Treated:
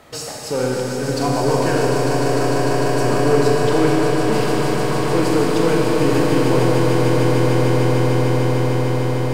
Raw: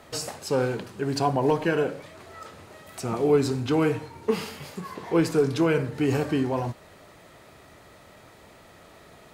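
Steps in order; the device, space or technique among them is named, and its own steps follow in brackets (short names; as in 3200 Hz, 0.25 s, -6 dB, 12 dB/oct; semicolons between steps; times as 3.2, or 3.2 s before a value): saturation between pre-emphasis and de-emphasis (high shelf 4300 Hz +11 dB; soft clip -17 dBFS, distortion -16 dB; high shelf 4300 Hz -11 dB); swelling echo 0.15 s, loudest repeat 8, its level -7.5 dB; Schroeder reverb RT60 3.9 s, combs from 28 ms, DRR -1.5 dB; gain +3 dB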